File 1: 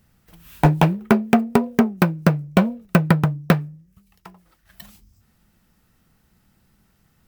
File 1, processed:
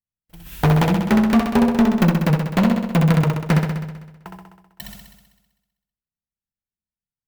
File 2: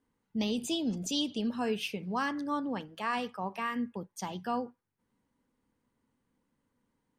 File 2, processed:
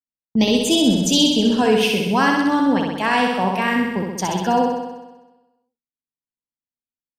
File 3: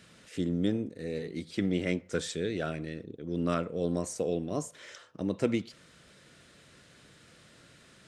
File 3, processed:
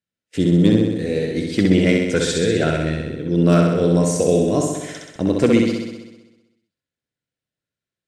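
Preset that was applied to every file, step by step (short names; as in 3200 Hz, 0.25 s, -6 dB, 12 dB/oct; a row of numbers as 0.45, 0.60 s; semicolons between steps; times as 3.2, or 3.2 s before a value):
notch 1200 Hz, Q 6.6; gate -48 dBFS, range -47 dB; low shelf 67 Hz +5 dB; hard clip -18 dBFS; on a send: flutter echo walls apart 11 m, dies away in 1.1 s; on the sum: match loudness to -18 LUFS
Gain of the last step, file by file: +5.0, +14.5, +12.0 dB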